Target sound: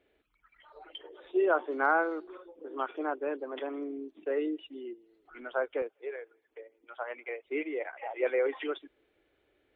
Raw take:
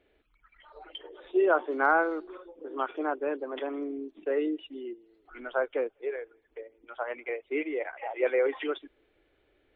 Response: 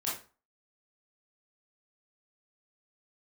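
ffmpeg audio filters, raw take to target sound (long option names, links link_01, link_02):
-af "asetnsamples=nb_out_samples=441:pad=0,asendcmd='5.82 highpass f 420;7.45 highpass f 76',highpass=frequency=77:poles=1,volume=-2.5dB"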